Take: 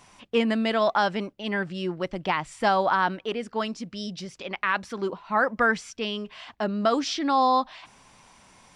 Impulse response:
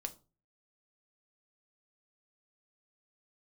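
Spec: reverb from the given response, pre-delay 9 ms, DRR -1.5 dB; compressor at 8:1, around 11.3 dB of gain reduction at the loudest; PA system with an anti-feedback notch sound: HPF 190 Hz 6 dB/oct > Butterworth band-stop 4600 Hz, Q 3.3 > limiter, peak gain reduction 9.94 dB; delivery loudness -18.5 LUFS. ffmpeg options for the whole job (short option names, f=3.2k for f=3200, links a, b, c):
-filter_complex "[0:a]acompressor=threshold=-29dB:ratio=8,asplit=2[a][b];[1:a]atrim=start_sample=2205,adelay=9[c];[b][c]afir=irnorm=-1:irlink=0,volume=3.5dB[d];[a][d]amix=inputs=2:normalize=0,highpass=f=190:p=1,asuperstop=centerf=4600:order=8:qfactor=3.3,volume=15.5dB,alimiter=limit=-8.5dB:level=0:latency=1"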